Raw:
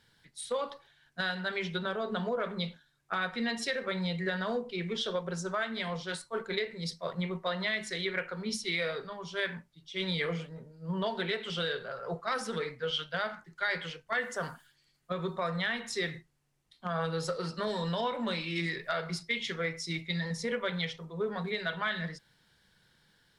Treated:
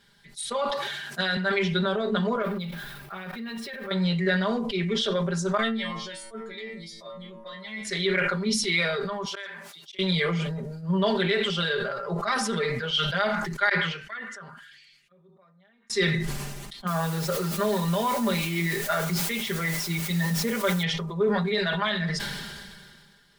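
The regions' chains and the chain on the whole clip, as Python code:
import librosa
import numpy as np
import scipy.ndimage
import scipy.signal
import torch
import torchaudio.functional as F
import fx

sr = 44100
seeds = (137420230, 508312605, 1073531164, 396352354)

y = fx.chain(x, sr, fx.highpass(hz=180.0, slope=12),
    fx.band_squash(depth_pct=40), at=(0.72, 1.37))
y = fx.chain(y, sr, fx.zero_step(step_db=-43.0),
    fx.level_steps(step_db=14),
    fx.peak_eq(hz=6900.0, db=-13.0, octaves=1.1), at=(2.42, 3.91))
y = fx.chain(y, sr, fx.low_shelf(hz=150.0, db=8.5),
    fx.stiff_resonator(f0_hz=110.0, decay_s=0.51, stiffness=0.002), at=(5.57, 7.85))
y = fx.chain(y, sr, fx.highpass(hz=640.0, slope=12),
    fx.auto_swell(attack_ms=692.0),
    fx.transformer_sat(knee_hz=2100.0), at=(9.25, 9.99))
y = fx.chain(y, sr, fx.tone_stack(knobs='10-0-1'),
    fx.auto_wah(base_hz=730.0, top_hz=2600.0, q=2.2, full_db=-51.5, direction='down'),
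    fx.sustainer(db_per_s=89.0), at=(13.69, 15.9))
y = fx.chain(y, sr, fx.high_shelf(hz=3200.0, db=-9.5),
    fx.quant_dither(seeds[0], bits=8, dither='triangular'), at=(16.87, 20.83))
y = y + 0.82 * np.pad(y, (int(5.0 * sr / 1000.0), 0))[:len(y)]
y = fx.sustainer(y, sr, db_per_s=29.0)
y = F.gain(torch.from_numpy(y), 4.0).numpy()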